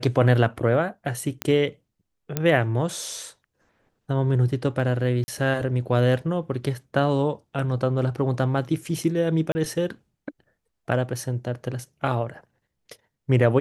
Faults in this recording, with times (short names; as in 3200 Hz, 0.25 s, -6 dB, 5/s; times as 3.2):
1.42 pop -9 dBFS
2.37 pop -9 dBFS
5.24–5.28 gap 40 ms
9.52–9.55 gap 30 ms